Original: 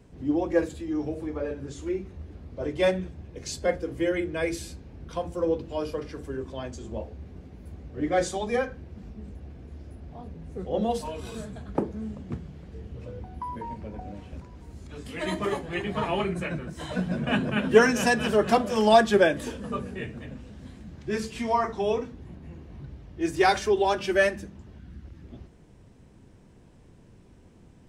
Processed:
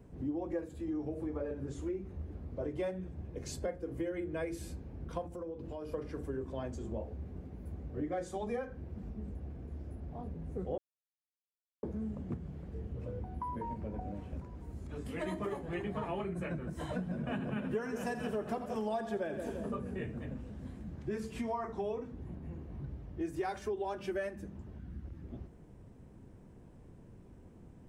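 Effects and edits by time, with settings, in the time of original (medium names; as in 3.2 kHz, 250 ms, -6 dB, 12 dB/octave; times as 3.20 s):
5.26–5.94 s: compression 8:1, threshold -37 dBFS
10.78–11.83 s: mute
17.02–19.75 s: two-band feedback delay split 640 Hz, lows 172 ms, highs 84 ms, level -11 dB
whole clip: peaking EQ 4.4 kHz -10.5 dB 2.5 oct; compression 6:1, threshold -33 dBFS; trim -1 dB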